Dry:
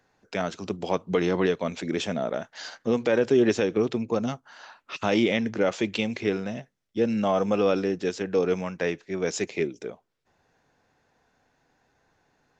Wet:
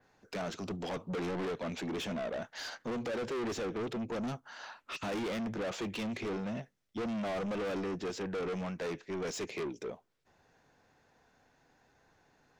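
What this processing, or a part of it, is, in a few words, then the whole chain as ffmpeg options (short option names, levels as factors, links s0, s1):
saturation between pre-emphasis and de-emphasis: -af "adynamicequalizer=threshold=0.00251:dfrequency=6400:dqfactor=0.93:tfrequency=6400:tqfactor=0.93:attack=5:release=100:ratio=0.375:range=2:mode=cutabove:tftype=bell,highshelf=f=5200:g=7,asoftclip=type=tanh:threshold=0.0211,highshelf=f=5200:g=-7"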